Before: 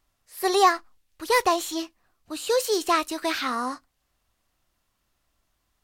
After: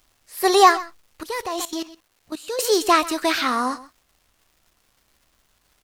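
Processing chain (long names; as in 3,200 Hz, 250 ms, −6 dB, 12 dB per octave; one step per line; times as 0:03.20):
single-tap delay 130 ms −18 dB
0:01.23–0:02.59: output level in coarse steps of 16 dB
surface crackle 550 per second −56 dBFS
level +5.5 dB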